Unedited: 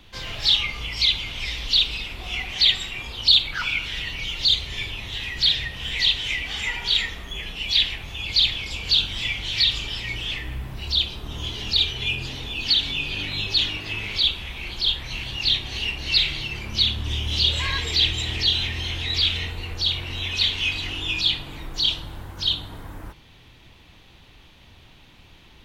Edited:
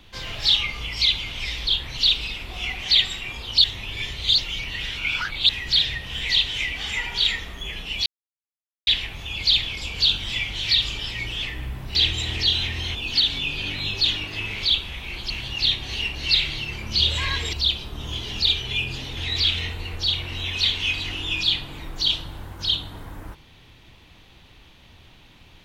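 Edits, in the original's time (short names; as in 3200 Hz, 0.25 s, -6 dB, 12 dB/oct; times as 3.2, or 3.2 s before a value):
3.34–5.19 reverse
7.76 insert silence 0.81 s
10.84–12.48 swap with 17.95–18.95
14.83–15.13 move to 1.67
16.81–17.4 cut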